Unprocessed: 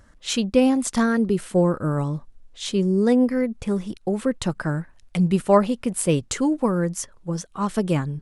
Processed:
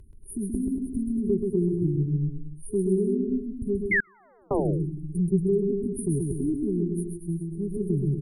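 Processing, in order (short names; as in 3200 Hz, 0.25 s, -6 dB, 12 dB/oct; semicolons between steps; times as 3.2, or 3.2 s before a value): FFT band-reject 420–9000 Hz; treble ducked by the level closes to 2300 Hz, closed at -18 dBFS; comb 2 ms, depth 64%; in parallel at +3 dB: compressor, threshold -30 dBFS, peak gain reduction 13 dB; 3.91–4.48 on the sum: painted sound fall 300–2200 Hz -15 dBFS; on a send: bouncing-ball echo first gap 0.13 s, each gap 0.8×, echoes 5; 4–4.51 on the sum: flipped gate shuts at -20 dBFS, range -38 dB; gain -6.5 dB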